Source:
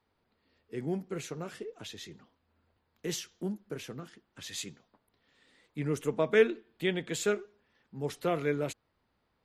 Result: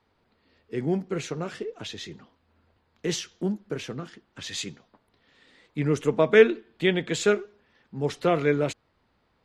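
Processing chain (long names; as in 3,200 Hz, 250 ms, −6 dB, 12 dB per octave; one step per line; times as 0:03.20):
low-pass filter 6,500 Hz 12 dB per octave
level +7.5 dB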